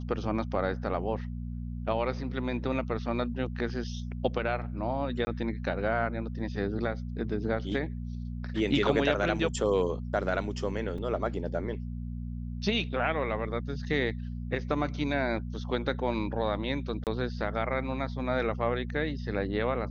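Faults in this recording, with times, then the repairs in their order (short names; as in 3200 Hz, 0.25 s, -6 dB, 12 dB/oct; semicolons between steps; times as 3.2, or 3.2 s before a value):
hum 60 Hz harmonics 4 -36 dBFS
5.25–5.27 gap 20 ms
10.98 gap 3.6 ms
17.04–17.07 gap 28 ms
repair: de-hum 60 Hz, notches 4; interpolate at 5.25, 20 ms; interpolate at 10.98, 3.6 ms; interpolate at 17.04, 28 ms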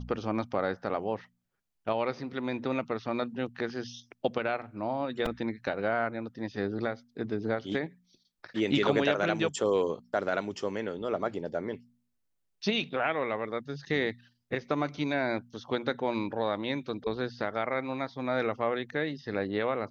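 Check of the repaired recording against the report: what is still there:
none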